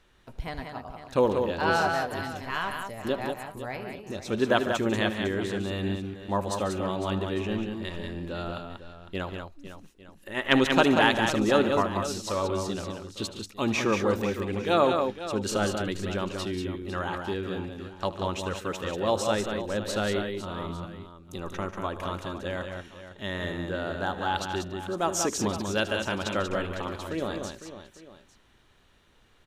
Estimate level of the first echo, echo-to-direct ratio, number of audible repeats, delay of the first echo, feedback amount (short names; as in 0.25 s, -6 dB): -17.5 dB, -4.0 dB, 5, 76 ms, no steady repeat